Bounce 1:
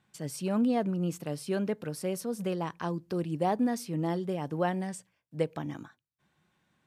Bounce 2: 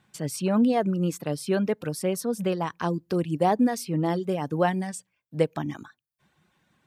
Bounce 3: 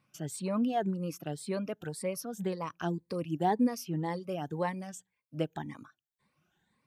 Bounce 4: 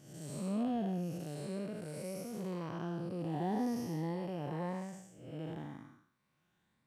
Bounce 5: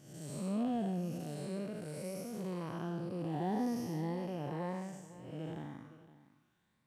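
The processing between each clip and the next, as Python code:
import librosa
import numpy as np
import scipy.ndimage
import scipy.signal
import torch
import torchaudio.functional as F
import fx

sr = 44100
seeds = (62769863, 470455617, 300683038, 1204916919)

y1 = fx.dereverb_blind(x, sr, rt60_s=0.57)
y1 = F.gain(torch.from_numpy(y1), 6.5).numpy()
y2 = fx.spec_ripple(y1, sr, per_octave=0.94, drift_hz=1.9, depth_db=12)
y2 = F.gain(torch.from_numpy(y2), -9.0).numpy()
y3 = fx.spec_blur(y2, sr, span_ms=300.0)
y4 = y3 + 10.0 ** (-16.5 / 20.0) * np.pad(y3, (int(513 * sr / 1000.0), 0))[:len(y3)]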